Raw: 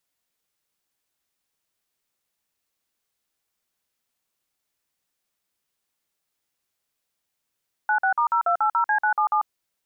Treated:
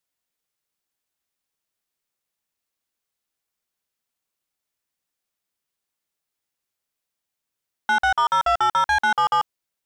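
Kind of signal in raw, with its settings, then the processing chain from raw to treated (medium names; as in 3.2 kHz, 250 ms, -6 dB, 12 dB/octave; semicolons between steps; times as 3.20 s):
DTMF "96*0280C977", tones 94 ms, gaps 49 ms, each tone -20.5 dBFS
waveshaping leveller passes 2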